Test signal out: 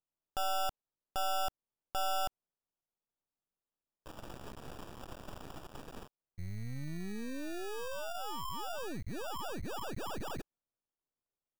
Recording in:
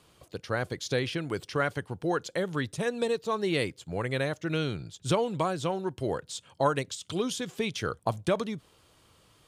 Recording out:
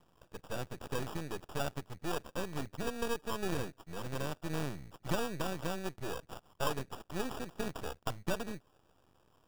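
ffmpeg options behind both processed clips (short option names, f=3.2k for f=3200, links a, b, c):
-af "acrusher=samples=21:mix=1:aa=0.000001,aeval=exprs='max(val(0),0)':c=same,volume=-3.5dB"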